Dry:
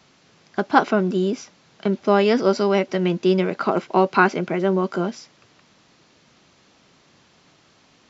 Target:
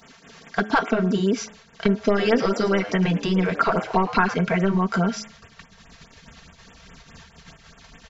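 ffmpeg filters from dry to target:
ffmpeg -i in.wav -filter_complex "[0:a]equalizer=frequency=1700:width_type=o:width=0.32:gain=5.5,agate=range=-39dB:threshold=-53dB:ratio=16:detection=peak,aeval=exprs='1*(cos(1*acos(clip(val(0)/1,-1,1)))-cos(1*PI/2))+0.0398*(cos(5*acos(clip(val(0)/1,-1,1)))-cos(5*PI/2))':channel_layout=same,acompressor=threshold=-20dB:ratio=6,bandreject=frequency=106.7:width_type=h:width=4,bandreject=frequency=213.4:width_type=h:width=4,bandreject=frequency=320.1:width_type=h:width=4,bandreject=frequency=426.8:width_type=h:width=4,bandreject=frequency=533.5:width_type=h:width=4,bandreject=frequency=640.2:width_type=h:width=4,bandreject=frequency=746.9:width_type=h:width=4,bandreject=frequency=853.6:width_type=h:width=4,bandreject=frequency=960.3:width_type=h:width=4,bandreject=frequency=1067:width_type=h:width=4,bandreject=frequency=1173.7:width_type=h:width=4,bandreject=frequency=1280.4:width_type=h:width=4,bandreject=frequency=1387.1:width_type=h:width=4,bandreject=frequency=1493.8:width_type=h:width=4,bandreject=frequency=1600.5:width_type=h:width=4,bandreject=frequency=1707.2:width_type=h:width=4,bandreject=frequency=1813.9:width_type=h:width=4,bandreject=frequency=1920.6:width_type=h:width=4,bandreject=frequency=2027.3:width_type=h:width=4,bandreject=frequency=2134:width_type=h:width=4,bandreject=frequency=2240.7:width_type=h:width=4,bandreject=frequency=2347.4:width_type=h:width=4,bandreject=frequency=2454.1:width_type=h:width=4,bandreject=frequency=2560.8:width_type=h:width=4,bandreject=frequency=2667.5:width_type=h:width=4,bandreject=frequency=2774.2:width_type=h:width=4,bandreject=frequency=2880.9:width_type=h:width=4,bandreject=frequency=2987.6:width_type=h:width=4,bandreject=frequency=3094.3:width_type=h:width=4,bandreject=frequency=3201:width_type=h:width=4,bandreject=frequency=3307.7:width_type=h:width=4,bandreject=frequency=3414.4:width_type=h:width=4,acompressor=mode=upward:threshold=-40dB:ratio=2.5,aecho=1:1:4.4:0.66,asettb=1/sr,asplit=3[link_01][link_02][link_03];[link_01]atrim=end=1.954[link_04];[link_02]atrim=start=1.95:end=4.34,asetpts=PTS-STARTPTS,afade=type=in:duration=0.004:curve=qsin,afade=type=out:start_time=2.386:duration=0.004:curve=qsin,asplit=5[link_05][link_06][link_07][link_08][link_09];[link_06]adelay=111,afreqshift=110,volume=-14dB[link_10];[link_07]adelay=222,afreqshift=220,volume=-22.6dB[link_11];[link_08]adelay=333,afreqshift=330,volume=-31.3dB[link_12];[link_09]adelay=444,afreqshift=440,volume=-39.9dB[link_13];[link_05][link_10][link_11][link_12][link_13]amix=inputs=5:normalize=0,atrim=end_sample=105399[link_14];[link_03]atrim=start=4.336[link_15];[link_04][link_14]acrossfade=duration=0.004:curve1=hsin:curve2=qsin[link_16];[link_16][link_15]acrossfade=duration=0.004:curve1=qsin:curve2=hsin,asubboost=boost=9.5:cutoff=89,afftfilt=real='re*(1-between(b*sr/1024,230*pow(5200/230,0.5+0.5*sin(2*PI*4.8*pts/sr))/1.41,230*pow(5200/230,0.5+0.5*sin(2*PI*4.8*pts/sr))*1.41))':imag='im*(1-between(b*sr/1024,230*pow(5200/230,0.5+0.5*sin(2*PI*4.8*pts/sr))/1.41,230*pow(5200/230,0.5+0.5*sin(2*PI*4.8*pts/sr))*1.41))':win_size=1024:overlap=0.75,volume=4.5dB" out.wav

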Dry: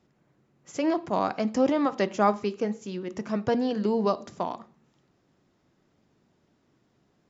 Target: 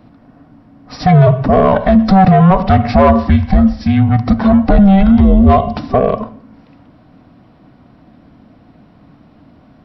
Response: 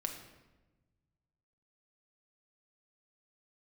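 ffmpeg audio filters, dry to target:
-af "afftfilt=real='real(if(between(b,1,1008),(2*floor((b-1)/24)+1)*24-b,b),0)':imag='imag(if(between(b,1,1008),(2*floor((b-1)/24)+1)*24-b,b),0)*if(between(b,1,1008),-1,1)':win_size=2048:overlap=0.75,asoftclip=type=tanh:threshold=-20dB,lowpass=frequency=1900:poles=1,asetrate=32667,aresample=44100,alimiter=level_in=25dB:limit=-1dB:release=50:level=0:latency=1,volume=-1dB"

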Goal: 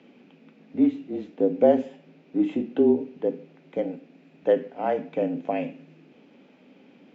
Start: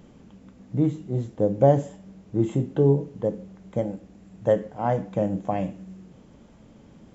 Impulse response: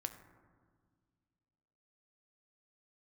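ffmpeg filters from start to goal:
-af "highpass=frequency=280:width=0.5412,highpass=frequency=280:width=1.3066,equalizer=frequency=290:width_type=q:width=4:gain=7,equalizer=frequency=1100:width_type=q:width=4:gain=-6,equalizer=frequency=2500:width_type=q:width=4:gain=10,lowpass=frequency=4600:width=0.5412,lowpass=frequency=4600:width=1.3066,afreqshift=-31"

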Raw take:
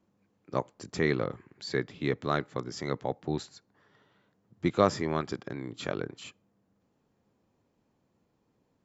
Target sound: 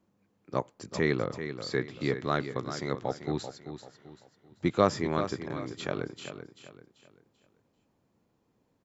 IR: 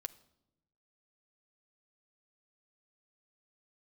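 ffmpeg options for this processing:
-af "aecho=1:1:388|776|1164|1552:0.316|0.111|0.0387|0.0136"

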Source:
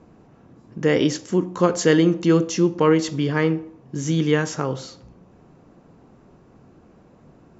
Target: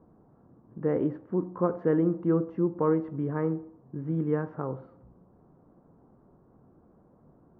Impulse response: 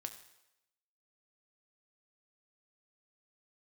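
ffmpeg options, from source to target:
-af "lowpass=frequency=1300:width=0.5412,lowpass=frequency=1300:width=1.3066,volume=-8dB"

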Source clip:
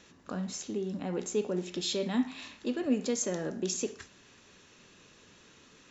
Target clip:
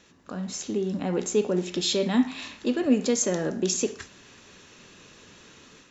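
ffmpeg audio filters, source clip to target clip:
ffmpeg -i in.wav -af "dynaudnorm=framelen=340:gausssize=3:maxgain=7dB" out.wav

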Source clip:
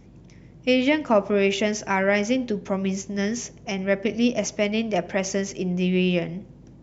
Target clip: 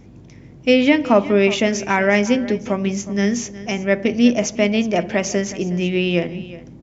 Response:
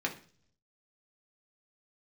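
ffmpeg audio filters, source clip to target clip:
-filter_complex "[0:a]aecho=1:1:365:0.141,asplit=2[link_01][link_02];[1:a]atrim=start_sample=2205,lowshelf=frequency=260:gain=11.5[link_03];[link_02][link_03]afir=irnorm=-1:irlink=0,volume=-18.5dB[link_04];[link_01][link_04]amix=inputs=2:normalize=0,volume=3.5dB"

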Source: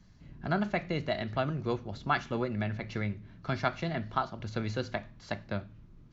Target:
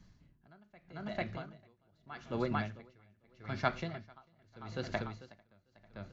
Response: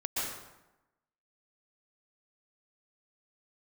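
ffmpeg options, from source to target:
-filter_complex "[0:a]asettb=1/sr,asplit=3[link_01][link_02][link_03];[link_01]atrim=end=0.784[link_04];[link_02]atrim=start=0.78:end=1.84,asetpts=PTS-STARTPTS,afade=type=in:duration=0.004:curve=qsin,afade=type=out:start_time=1.056:duration=0.004:curve=qsin,acompressor=threshold=-36dB:ratio=6[link_05];[link_03]atrim=start=1.836[link_06];[link_04][link_05]acrossfade=duration=0.004:curve1=hsin:curve2=qsin[link_07];[link_07][link_06]acrossfade=duration=0.004:curve1=qsin:curve2=hsin,aecho=1:1:446|892|1338|1784|2230:0.562|0.214|0.0812|0.0309|0.0117,aeval=exprs='val(0)*pow(10,-31*(0.5-0.5*cos(2*PI*0.81*n/s))/20)':channel_layout=same,volume=-1.5dB"

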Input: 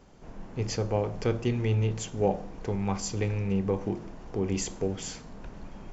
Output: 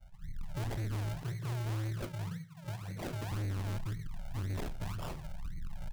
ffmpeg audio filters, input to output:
ffmpeg -i in.wav -filter_complex "[0:a]asettb=1/sr,asplit=3[link_01][link_02][link_03];[link_01]atrim=end=1.154[link_04];[link_02]atrim=start=1.15:end=3.32,asetpts=PTS-STARTPTS,afade=type=in:duration=0.004:curve=qsin,afade=type=out:start_time=2.166:duration=0.004:curve=qsin,highpass=frequency=130:width=0.5412,highpass=frequency=130:width=1.3066[link_05];[link_03]atrim=start=3.316[link_06];[link_04][link_05]acrossfade=duration=0.004:curve1=hsin:curve2=qsin[link_07];[link_07][link_06]acrossfade=duration=0.004:curve1=qsin:curve2=hsin,afftfilt=real='re*(1-between(b*sr/4096,190,1500))':imag='im*(1-between(b*sr/4096,190,1500))':win_size=4096:overlap=0.75,afftdn=noise_reduction=20:noise_floor=-45,lowshelf=frequency=230:gain=8.5,acrusher=samples=41:mix=1:aa=0.000001:lfo=1:lforange=41:lforate=1.9,flanger=delay=9.3:depth=6.3:regen=-67:speed=0.49:shape=sinusoidal,asoftclip=type=tanh:threshold=-37.5dB,aecho=1:1:107:0.0794,volume=4dB" out.wav

